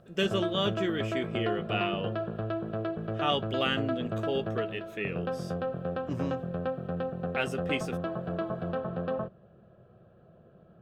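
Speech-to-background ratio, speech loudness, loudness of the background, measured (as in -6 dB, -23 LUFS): 1.5 dB, -33.0 LUFS, -34.5 LUFS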